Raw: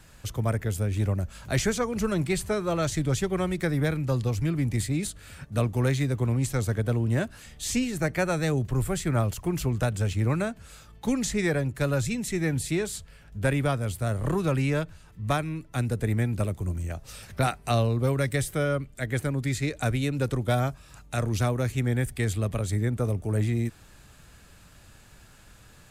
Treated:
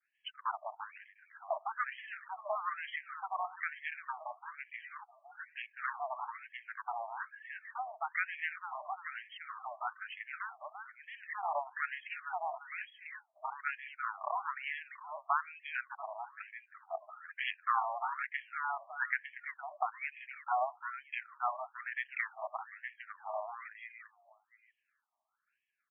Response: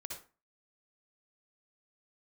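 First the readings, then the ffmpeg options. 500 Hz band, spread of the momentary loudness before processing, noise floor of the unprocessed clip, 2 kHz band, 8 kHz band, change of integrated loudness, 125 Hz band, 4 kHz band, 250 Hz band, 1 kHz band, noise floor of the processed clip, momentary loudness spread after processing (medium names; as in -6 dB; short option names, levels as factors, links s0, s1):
-16.5 dB, 6 LU, -53 dBFS, -3.5 dB, under -40 dB, -12.0 dB, under -40 dB, -13.5 dB, under -40 dB, -1.0 dB, -82 dBFS, 12 LU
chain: -filter_complex "[0:a]asplit=2[s0][s1];[s1]aeval=exprs='sgn(val(0))*max(abs(val(0))-0.00708,0)':c=same,volume=0.376[s2];[s0][s2]amix=inputs=2:normalize=0,afftdn=nr=25:nf=-41,equalizer=f=220:w=1.1:g=8.5,bandreject=f=60:t=h:w=6,bandreject=f=120:t=h:w=6,aphaser=in_gain=1:out_gain=1:delay=1:decay=0.36:speed=0.17:type=sinusoidal,agate=range=0.0224:threshold=0.00447:ratio=3:detection=peak,highshelf=f=5900:g=-10.5,aecho=1:1:342|684|1026:0.224|0.0739|0.0244,asoftclip=type=tanh:threshold=0.15,acompressor=threshold=0.0398:ratio=5,afftfilt=real='re*between(b*sr/1024,840*pow(2400/840,0.5+0.5*sin(2*PI*1.1*pts/sr))/1.41,840*pow(2400/840,0.5+0.5*sin(2*PI*1.1*pts/sr))*1.41)':imag='im*between(b*sr/1024,840*pow(2400/840,0.5+0.5*sin(2*PI*1.1*pts/sr))/1.41,840*pow(2400/840,0.5+0.5*sin(2*PI*1.1*pts/sr))*1.41)':win_size=1024:overlap=0.75,volume=2.51"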